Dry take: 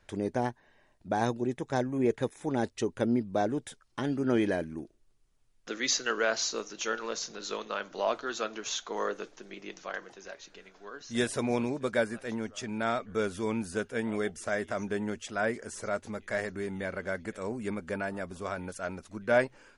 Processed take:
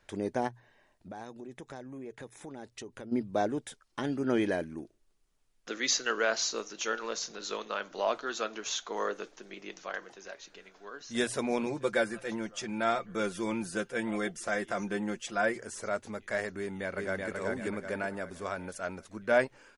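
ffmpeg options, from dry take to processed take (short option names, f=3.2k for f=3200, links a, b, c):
-filter_complex "[0:a]asplit=3[a][b][c];[a]afade=t=out:st=0.47:d=0.02[d];[b]acompressor=threshold=-40dB:ratio=5:attack=3.2:release=140:knee=1:detection=peak,afade=t=in:st=0.47:d=0.02,afade=t=out:st=3.11:d=0.02[e];[c]afade=t=in:st=3.11:d=0.02[f];[d][e][f]amix=inputs=3:normalize=0,asettb=1/sr,asplit=3[g][h][i];[g]atrim=end=11.664[j];[h]atrim=start=11.66:end=15.6,asetpts=PTS-STARTPTS,afade=t=in:d=0.004:c=qsin,afade=t=out:st=3.936:d=0.004:c=qsin,aecho=1:1:5.8:0.65,atrim=end_sample=173754[k];[i]atrim=start=15.596[l];[j][k]acrossfade=d=0.004:c1=hsin:c2=qsin[m];[m][l]acrossfade=d=0.004:c1=qsin:c2=hsin,asplit=2[n][o];[o]afade=t=in:st=16.59:d=0.01,afade=t=out:st=17.3:d=0.01,aecho=0:1:380|760|1140|1520|1900|2280:0.794328|0.357448|0.160851|0.0723832|0.0325724|0.0146576[p];[n][p]amix=inputs=2:normalize=0,lowshelf=f=230:g=-4.5,bandreject=f=60:t=h:w=6,bandreject=f=120:t=h:w=6"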